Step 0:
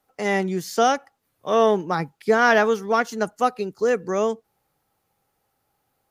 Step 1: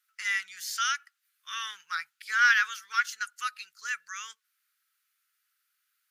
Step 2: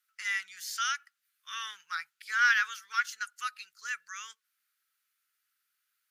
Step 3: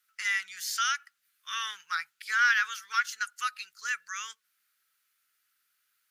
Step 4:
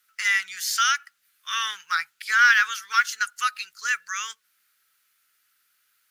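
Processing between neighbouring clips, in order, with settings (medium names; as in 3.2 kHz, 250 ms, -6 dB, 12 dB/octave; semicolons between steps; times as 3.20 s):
elliptic high-pass 1.4 kHz, stop band 50 dB
dynamic bell 650 Hz, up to +6 dB, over -51 dBFS, Q 2.5; trim -3 dB
compression 1.5:1, threshold -33 dBFS, peak gain reduction 5 dB; trim +5 dB
block-companded coder 7-bit; trim +7 dB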